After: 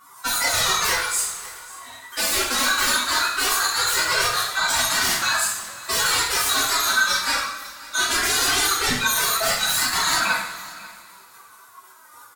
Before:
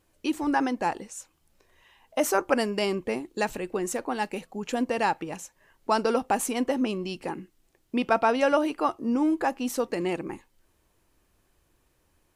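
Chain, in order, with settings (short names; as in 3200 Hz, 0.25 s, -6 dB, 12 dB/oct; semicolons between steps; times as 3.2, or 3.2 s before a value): band-swap scrambler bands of 1000 Hz; HPF 1100 Hz 6 dB/oct; reverb removal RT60 1.1 s; de-esser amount 50%; bell 3200 Hz -11 dB 1.6 oct; limiter -24 dBFS, peak gain reduction 7 dB; chorus voices 4, 1.3 Hz, delay 17 ms, depth 3 ms; sine folder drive 20 dB, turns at -23 dBFS; flange 0.2 Hz, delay 1.7 ms, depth 5.4 ms, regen -25%; formant-preserving pitch shift +11 st; echo 0.542 s -20 dB; two-slope reverb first 0.62 s, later 2.8 s, from -17 dB, DRR -5.5 dB; gain +4 dB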